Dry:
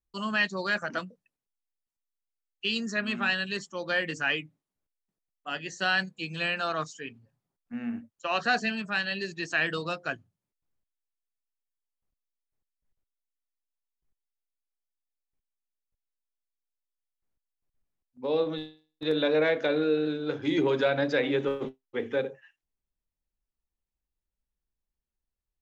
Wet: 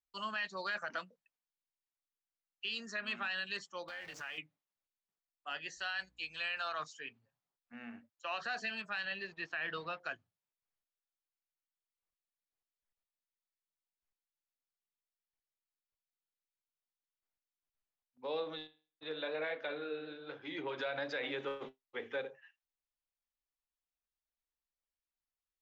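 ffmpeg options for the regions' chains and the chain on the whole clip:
-filter_complex "[0:a]asettb=1/sr,asplit=3[a][b][c];[a]atrim=end=3.884[d];[b]atrim=start=3.88:end=4.38,asetpts=PTS-STARTPTS,afade=t=in:d=0.004:c=qsin,afade=t=out:st=0.496:d=0.004:c=qsin,aeval=exprs='val(0)+0.5*0.0158*sgn(val(0))':c=same,acompressor=threshold=-34dB:ratio=6:attack=3.2:release=140:knee=1:detection=peak,tremolo=f=280:d=0.621[e];[c]atrim=start=4.376[f];[d][e]acrossfade=d=0.004:c1=hsin:c2=qsin[g];[g][f]acrossfade=d=0.004:c1=qsin:c2=hsin,asettb=1/sr,asplit=3[h][i][j];[h]atrim=end=5.774[k];[i]atrim=start=5.77:end=6.8,asetpts=PTS-STARTPTS,afade=t=in:d=0.004:c=qsin,afade=t=out:st=1.026:d=0.004:c=qsin,aeval=exprs='val(0)+0.00316*(sin(2*PI*60*n/s)+sin(2*PI*2*60*n/s)/2+sin(2*PI*3*60*n/s)/3+sin(2*PI*4*60*n/s)/4+sin(2*PI*5*60*n/s)/5)':c=same,equalizer=f=140:w=0.31:g=-10[l];[j]atrim=start=6.796[m];[k][l]acrossfade=d=0.004:c1=hsin:c2=qsin[n];[n][m]acrossfade=d=0.004:c1=qsin:c2=hsin,asettb=1/sr,asplit=3[o][p][q];[o]atrim=end=9.054[r];[p]atrim=start=9.05:end=10,asetpts=PTS-STARTPTS,afade=t=in:d=0.004:c=qsin,afade=t=out:st=0.946:d=0.004:c=qsin,equalizer=f=73:w=0.68:g=7.5,aeval=exprs='sgn(val(0))*max(abs(val(0))-0.00211,0)':c=same,lowpass=3k[s];[q]atrim=start=9.996[t];[r][s]acrossfade=d=0.004:c1=hsin:c2=qsin[u];[u][t]acrossfade=d=0.004:c1=qsin:c2=hsin,asettb=1/sr,asplit=3[v][w][x];[v]atrim=end=18.674[y];[w]atrim=start=18.67:end=20.78,asetpts=PTS-STARTPTS,afade=t=in:d=0.004:c=qsin,afade=t=out:st=2.106:d=0.004:c=qsin,lowpass=4k,flanger=delay=3.8:depth=8.6:regen=-61:speed=1.1:shape=triangular[z];[x]atrim=start=20.776[aa];[y][z]acrossfade=d=0.004:c1=hsin:c2=qsin[ab];[ab][aa]acrossfade=d=0.004:c1=qsin:c2=hsin,acrossover=split=560 5100:gain=0.224 1 0.2[ac][ad][ae];[ac][ad][ae]amix=inputs=3:normalize=0,alimiter=level_in=0.5dB:limit=-24dB:level=0:latency=1:release=46,volume=-0.5dB,highshelf=f=5.6k:g=5,volume=-4.5dB"

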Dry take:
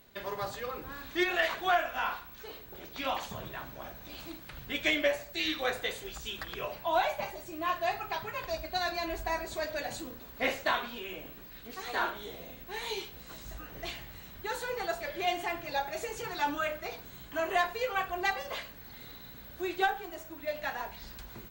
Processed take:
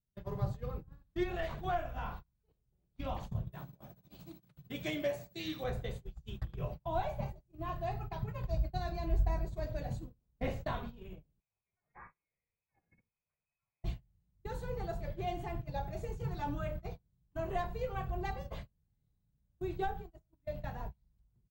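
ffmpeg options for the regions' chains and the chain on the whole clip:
-filter_complex "[0:a]asettb=1/sr,asplit=3[a][b][c];[a]atrim=end=3.524[d];[b]atrim=start=3.52:end=5.64,asetpts=PTS-STARTPTS,afade=t=in:d=0.004:c=qsin,afade=t=out:st=2.116:d=0.004:c=qsin,highshelf=f=4.2k:g=9,volume=18dB,asoftclip=hard,volume=-18dB,highpass=170[e];[c]atrim=start=5.636[f];[d][e]acrossfade=d=0.004:c1=hsin:c2=qsin[g];[g][f]acrossfade=d=0.004:c1=qsin:c2=hsin,asettb=1/sr,asplit=3[h][i][j];[h]atrim=end=11.404[k];[i]atrim=start=11.4:end=13.84,asetpts=PTS-STARTPTS,afade=t=in:d=0.004:c=qsin,afade=t=out:st=2.436:d=0.004:c=qsin,lowpass=f=2.2k:t=q:w=0.5098,lowpass=f=2.2k:t=q:w=0.6013,lowpass=f=2.2k:t=q:w=0.9,lowpass=f=2.2k:t=q:w=2.563,afreqshift=-2600,acompressor=threshold=-43dB:ratio=2:attack=3.2:release=140:knee=1:detection=peak[l];[j]atrim=start=13.836[m];[k][l]acrossfade=d=0.004:c1=hsin:c2=qsin[n];[n][m]acrossfade=d=0.004:c1=qsin:c2=hsin,agate=range=-35dB:threshold=-39dB:ratio=16:detection=peak,firequalizer=gain_entry='entry(150,0);entry(260,-17);entry(1600,-30)':delay=0.05:min_phase=1,volume=14.5dB"

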